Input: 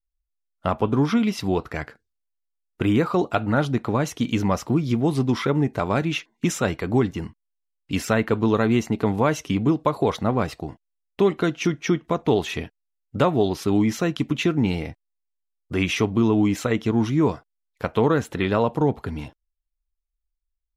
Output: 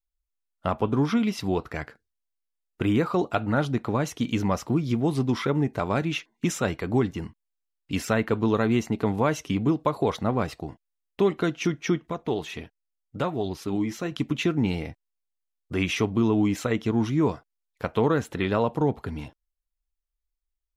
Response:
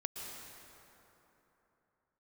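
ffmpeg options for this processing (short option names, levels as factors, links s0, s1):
-filter_complex "[0:a]asettb=1/sr,asplit=3[s0][s1][s2];[s0]atrim=end=12.074[s3];[s1]atrim=start=12.07:end=14.12,asetpts=PTS-STARTPTS,afade=t=in:d=0.004:c=qsin,afade=t=out:st=2.046:d=0.004:c=qsin,flanger=delay=0.4:depth=6.2:regen=64:speed=1.4:shape=sinusoidal[s4];[s2]atrim=start=14.116[s5];[s3][s4]acrossfade=d=0.004:c1=hsin:c2=qsin[s6];[s6][s5]acrossfade=d=0.004:c1=qsin:c2=hsin,volume=0.708"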